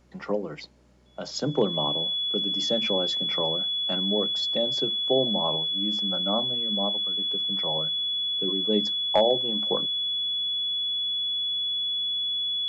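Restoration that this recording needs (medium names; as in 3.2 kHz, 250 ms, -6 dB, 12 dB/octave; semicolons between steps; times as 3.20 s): de-hum 61.7 Hz, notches 6; band-stop 3.4 kHz, Q 30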